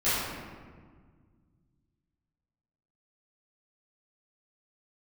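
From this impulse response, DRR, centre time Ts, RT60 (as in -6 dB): -16.0 dB, 114 ms, 1.7 s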